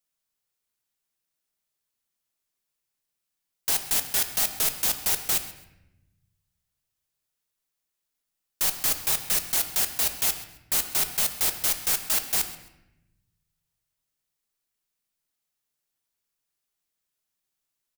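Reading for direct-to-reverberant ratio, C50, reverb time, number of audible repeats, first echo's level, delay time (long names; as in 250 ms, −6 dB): 6.5 dB, 10.0 dB, 0.90 s, 1, −18.0 dB, 133 ms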